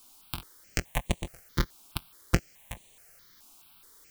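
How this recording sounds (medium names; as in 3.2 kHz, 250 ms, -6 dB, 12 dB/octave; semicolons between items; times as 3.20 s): a buzz of ramps at a fixed pitch in blocks of 256 samples; chopped level 9.4 Hz, depth 65%, duty 50%; a quantiser's noise floor 10-bit, dither triangular; notches that jump at a steady rate 4.7 Hz 500–5100 Hz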